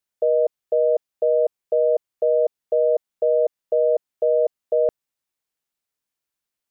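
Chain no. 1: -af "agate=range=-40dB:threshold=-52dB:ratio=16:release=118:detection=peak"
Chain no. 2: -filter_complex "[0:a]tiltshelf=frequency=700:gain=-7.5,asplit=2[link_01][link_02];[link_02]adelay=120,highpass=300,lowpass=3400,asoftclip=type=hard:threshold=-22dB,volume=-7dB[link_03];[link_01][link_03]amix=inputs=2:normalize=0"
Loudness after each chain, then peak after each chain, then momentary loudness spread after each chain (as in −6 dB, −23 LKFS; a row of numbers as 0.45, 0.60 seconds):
−21.5, −23.5 LKFS; −11.5, −13.5 dBFS; 2, 2 LU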